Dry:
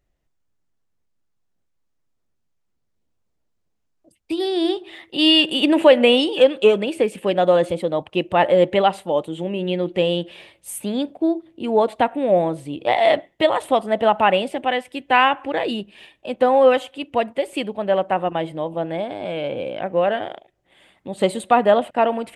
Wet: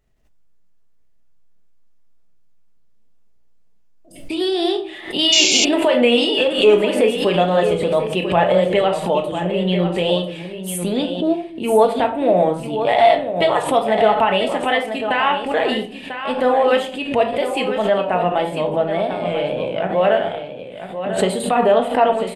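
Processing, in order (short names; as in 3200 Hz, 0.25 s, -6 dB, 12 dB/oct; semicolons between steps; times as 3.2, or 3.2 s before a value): dynamic EQ 220 Hz, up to -5 dB, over -34 dBFS, Q 1.8; limiter -11 dBFS, peak gain reduction 8.5 dB; shoebox room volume 440 m³, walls furnished, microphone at 1.5 m; wow and flutter 48 cents; on a send: echo 0.994 s -9.5 dB; on the sum: painted sound noise, 5.32–5.65, 2100–7500 Hz -19 dBFS; backwards sustainer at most 110 dB/s; gain +2.5 dB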